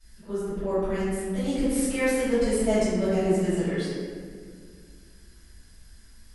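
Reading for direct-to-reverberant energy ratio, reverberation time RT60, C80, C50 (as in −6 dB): −18.0 dB, 2.0 s, −1.0 dB, −4.0 dB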